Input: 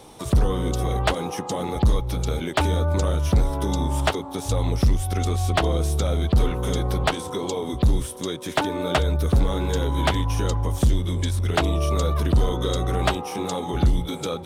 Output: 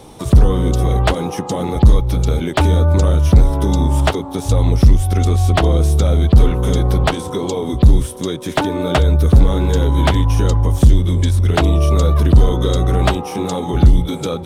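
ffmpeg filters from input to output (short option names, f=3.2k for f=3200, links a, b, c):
-af "lowshelf=f=400:g=6.5,volume=3.5dB"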